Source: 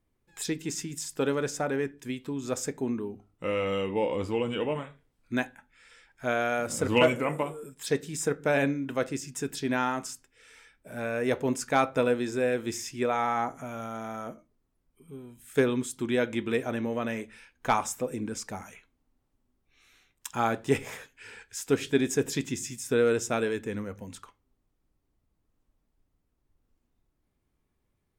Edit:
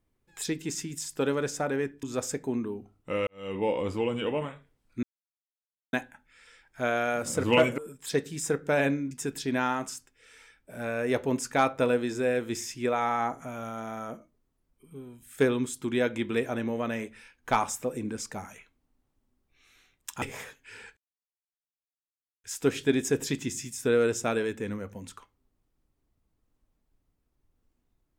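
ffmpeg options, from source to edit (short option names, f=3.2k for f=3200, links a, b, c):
-filter_complex "[0:a]asplit=8[a][b][c][d][e][f][g][h];[a]atrim=end=2.032[i];[b]atrim=start=2.368:end=3.61,asetpts=PTS-STARTPTS,afade=t=out:st=1.238:d=0.004:c=hsin[j];[c]atrim=start=3.61:end=5.37,asetpts=PTS-STARTPTS,afade=t=in:d=0.29:c=qua,afade=t=out:st=1.756:d=0.004:c=hsin,apad=pad_dur=0.9[k];[d]atrim=start=5.37:end=7.222,asetpts=PTS-STARTPTS,afade=t=in:d=0.004:c=hsin[l];[e]atrim=start=7.548:end=8.882[m];[f]atrim=start=9.278:end=20.392[n];[g]atrim=start=20.748:end=21.5,asetpts=PTS-STARTPTS,afade=t=out:st=0.748:d=0.004:c=hsin,apad=pad_dur=1.47[o];[h]atrim=start=21.5,asetpts=PTS-STARTPTS,afade=t=in:d=0.004:c=hsin[p];[j][k][l]concat=n=3:v=0:a=1[q];[i][q]acrossfade=d=0.004:c1=hsin:c2=hsin[r];[r][m]acrossfade=d=0.004:c1=hsin:c2=hsin[s];[s][n]acrossfade=d=0.004:c1=hsin:c2=hsin[t];[o][p]concat=n=2:v=0:a=1[u];[t][u]acrossfade=d=0.004:c1=hsin:c2=hsin"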